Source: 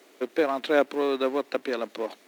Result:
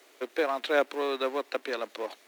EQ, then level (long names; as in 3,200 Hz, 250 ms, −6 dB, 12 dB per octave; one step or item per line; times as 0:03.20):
Bessel high-pass filter 350 Hz, order 8
low-shelf EQ 490 Hz −5 dB
0.0 dB